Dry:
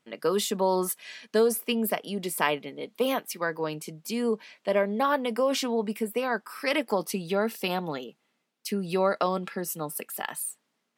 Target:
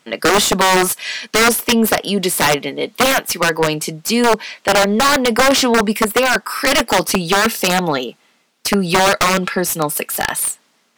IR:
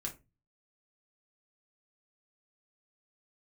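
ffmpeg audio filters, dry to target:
-filter_complex "[0:a]aeval=exprs='(mod(10*val(0)+1,2)-1)/10':c=same,bass=f=250:g=7,treble=f=4000:g=10,asplit=2[s0][s1];[s1]highpass=f=720:p=1,volume=8.91,asoftclip=type=tanh:threshold=0.473[s2];[s0][s2]amix=inputs=2:normalize=0,lowpass=f=2500:p=1,volume=0.501,volume=2.11"

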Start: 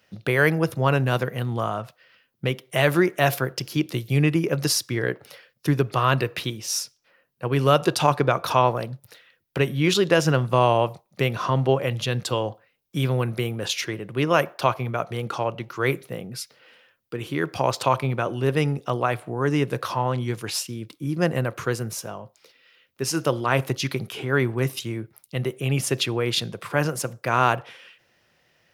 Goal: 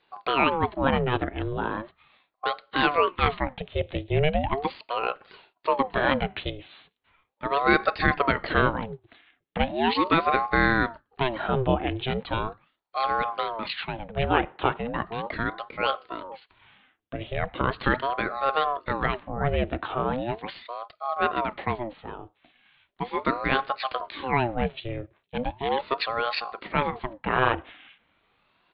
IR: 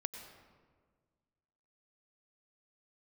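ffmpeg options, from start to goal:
-af "aresample=8000,aresample=44100,aeval=exprs='val(0)*sin(2*PI*580*n/s+580*0.65/0.38*sin(2*PI*0.38*n/s))':c=same"

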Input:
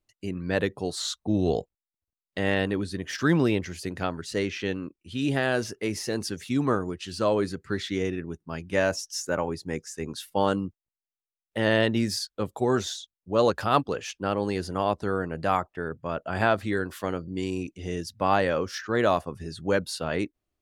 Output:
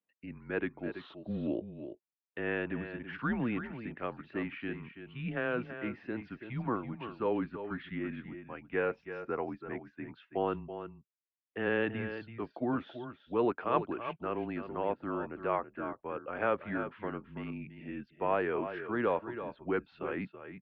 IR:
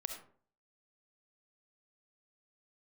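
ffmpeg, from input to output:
-af "aecho=1:1:328|332:0.112|0.299,highpass=f=300:t=q:w=0.5412,highpass=f=300:t=q:w=1.307,lowpass=f=2800:t=q:w=0.5176,lowpass=f=2800:t=q:w=0.7071,lowpass=f=2800:t=q:w=1.932,afreqshift=-120,volume=0.447"

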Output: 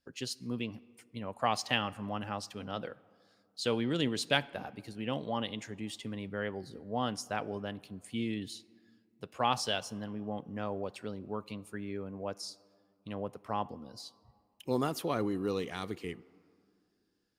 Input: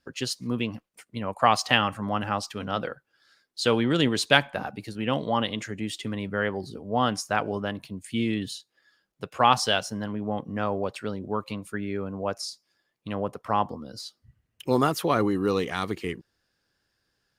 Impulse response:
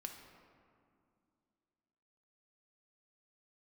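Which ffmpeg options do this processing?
-filter_complex "[0:a]equalizer=f=1300:t=o:w=1.2:g=-4.5,asplit=2[s0][s1];[1:a]atrim=start_sample=2205,lowshelf=f=170:g=-9[s2];[s1][s2]afir=irnorm=-1:irlink=0,volume=0.299[s3];[s0][s3]amix=inputs=2:normalize=0,volume=0.355"

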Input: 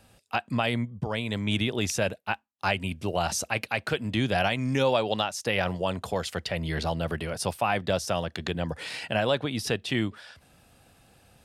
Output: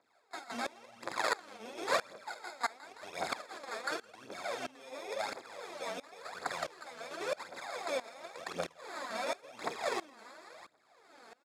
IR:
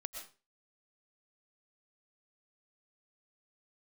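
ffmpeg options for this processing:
-filter_complex "[0:a]asettb=1/sr,asplit=3[s0][s1][s2];[s0]atrim=end=2.184[s3];[s1]atrim=start=2.18:end=2.78,asetpts=PTS-STARTPTS,afade=t=in:d=0.004:c=qsin,afade=t=out:st=0.596:d=0.004:c=qsin,equalizer=f=1200:t=o:w=3:g=9[s4];[s2]atrim=start=2.776[s5];[s3][s4]acrossfade=d=0.004:c1=hsin:c2=qsin[s6];[s6][s5]acrossfade=d=0.004:c1=qsin:c2=hsin,acompressor=threshold=0.0316:ratio=10,asettb=1/sr,asplit=3[s7][s8][s9];[s7]atrim=end=0.844[s10];[s8]atrim=start=0.84:end=1.4,asetpts=PTS-STARTPTS,afade=t=in:d=0.004:c=qsin,afade=t=out:st=0.556:d=0.004:c=qsin,aeval=exprs='(mod(47.3*val(0)+1,2)-1)/47.3':c=same[s11];[s9]atrim=start=1.396[s12];[s10][s11]acrossfade=d=0.004:c1=hsin:c2=qsin[s13];[s13][s12]acrossfade=d=0.004:c1=qsin:c2=hsin,aecho=1:1:166|332|498|664|830:0.398|0.159|0.0637|0.0255|0.0102,asoftclip=type=tanh:threshold=0.0422,crystalizer=i=2.5:c=0,acrusher=samples=15:mix=1:aa=0.000001,asplit=2[s14][s15];[s15]adelay=47,volume=0.335[s16];[s14][s16]amix=inputs=2:normalize=0,asplit=2[s17][s18];[1:a]atrim=start_sample=2205[s19];[s18][s19]afir=irnorm=-1:irlink=0,volume=0.668[s20];[s17][s20]amix=inputs=2:normalize=0,aphaser=in_gain=1:out_gain=1:delay=4.6:decay=0.66:speed=0.93:type=triangular,highpass=470,lowpass=7800,aeval=exprs='val(0)*pow(10,-22*if(lt(mod(-1.5*n/s,1),2*abs(-1.5)/1000),1-mod(-1.5*n/s,1)/(2*abs(-1.5)/1000),(mod(-1.5*n/s,1)-2*abs(-1.5)/1000)/(1-2*abs(-1.5)/1000))/20)':c=same,volume=0.794"

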